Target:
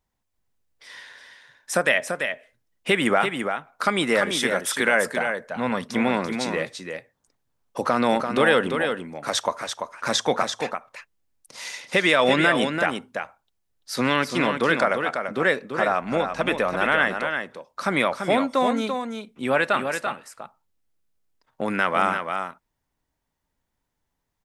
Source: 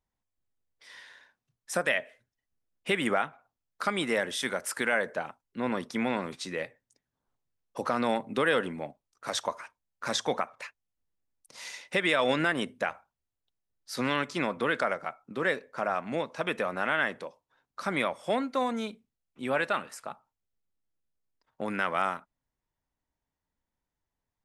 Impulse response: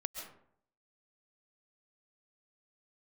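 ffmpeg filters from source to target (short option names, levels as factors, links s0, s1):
-filter_complex "[0:a]asettb=1/sr,asplit=3[s0][s1][s2];[s0]atrim=end=5.084[s3];[s1]atrim=start=5.08:end=5.91,asetpts=PTS-STARTPTS,afade=t=in:d=0.004:c=qsin,afade=t=out:st=0.826:d=0.004:c=qsin,equalizer=f=340:t=o:w=0.45:g=-12[s4];[s2]atrim=start=5.906[s5];[s3][s4]acrossfade=d=0.004:c1=hsin:c2=qsin[s6];[s6][s5]acrossfade=d=0.004:c1=qsin:c2=hsin,asettb=1/sr,asplit=3[s7][s8][s9];[s7]atrim=end=16.024[s10];[s8]atrim=start=16.02:end=17.04,asetpts=PTS-STARTPTS,afade=t=in:d=0.004:c=qsin,afade=t=out:st=1.016:d=0.004:c=qsin,aeval=exprs='val(0)+0.00112*(sin(2*PI*50*n/s)+sin(2*PI*2*50*n/s)/2+sin(2*PI*3*50*n/s)/3+sin(2*PI*4*50*n/s)/4+sin(2*PI*5*50*n/s)/5)':c=same[s11];[s9]atrim=start=17.036[s12];[s10][s11]acrossfade=d=0.004:c1=hsin:c2=qsin[s13];[s13][s12]acrossfade=d=0.004:c1=qsin:c2=hsin,aecho=1:1:339:0.473,volume=2.24"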